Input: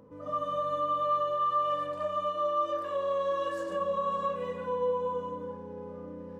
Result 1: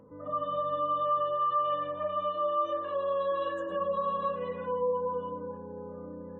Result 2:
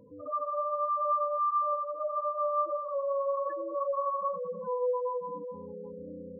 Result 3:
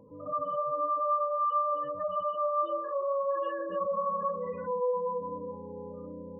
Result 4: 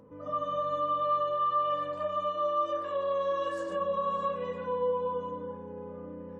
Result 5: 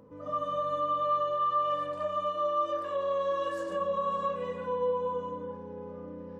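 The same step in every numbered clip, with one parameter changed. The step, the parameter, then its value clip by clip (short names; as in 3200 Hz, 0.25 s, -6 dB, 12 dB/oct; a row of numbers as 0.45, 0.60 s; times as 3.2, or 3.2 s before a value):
spectral gate, under each frame's peak: -35, -10, -20, -50, -60 dB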